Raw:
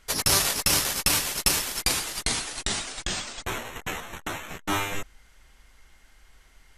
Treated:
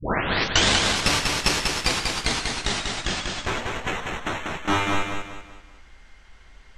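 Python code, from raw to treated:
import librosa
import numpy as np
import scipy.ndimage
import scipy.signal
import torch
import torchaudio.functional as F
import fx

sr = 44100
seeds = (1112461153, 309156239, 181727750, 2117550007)

y = fx.tape_start_head(x, sr, length_s=1.02)
y = fx.air_absorb(y, sr, metres=99.0)
y = fx.echo_feedback(y, sr, ms=192, feedback_pct=38, wet_db=-4.0)
y = y * 10.0 ** (5.0 / 20.0)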